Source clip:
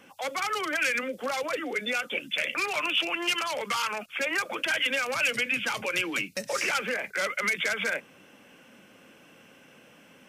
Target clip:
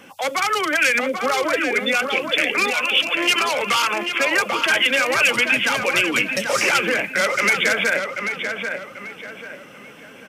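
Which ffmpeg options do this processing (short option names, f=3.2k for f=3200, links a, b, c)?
-filter_complex "[0:a]asettb=1/sr,asplit=3[a][b][c];[a]atrim=end=2.704[d];[b]atrim=start=2.7:end=3.15,asetpts=PTS-STARTPTS,afade=t=in:d=0.004:c=qsin,afade=t=out:st=0.446:d=0.004:c=qsin,highpass=f=1.5k:p=1[e];[c]atrim=start=3.146[f];[d][e]acrossfade=d=0.004:c1=hsin:c2=qsin[g];[g][f]acrossfade=d=0.004:c1=qsin:c2=hsin,asplit=2[h][i];[i]adelay=789,lowpass=f=3.1k:p=1,volume=-5.5dB,asplit=2[j][k];[k]adelay=789,lowpass=f=3.1k:p=1,volume=0.38,asplit=2[l][m];[m]adelay=789,lowpass=f=3.1k:p=1,volume=0.38,asplit=2[n][o];[o]adelay=789,lowpass=f=3.1k:p=1,volume=0.38,asplit=2[p][q];[q]adelay=789,lowpass=f=3.1k:p=1,volume=0.38[r];[h][j][l][n][p][r]amix=inputs=6:normalize=0,volume=9dB"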